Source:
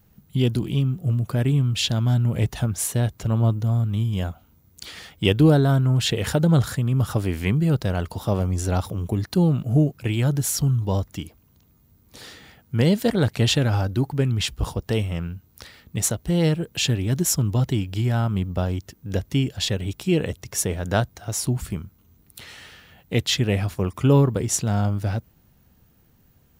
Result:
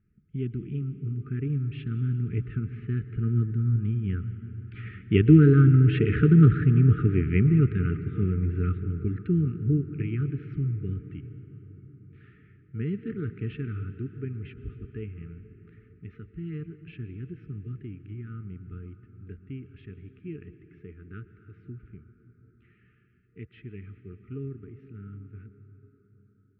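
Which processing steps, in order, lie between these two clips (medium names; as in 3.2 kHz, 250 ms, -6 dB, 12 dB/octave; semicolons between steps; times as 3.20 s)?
Doppler pass-by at 6.14 s, 8 m/s, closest 11 m; FFT band-reject 460–1200 Hz; elliptic low-pass 2.5 kHz, stop band 70 dB; tilt shelf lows +3.5 dB, about 1.5 kHz; on a send: reverberation RT60 5.4 s, pre-delay 102 ms, DRR 11.5 dB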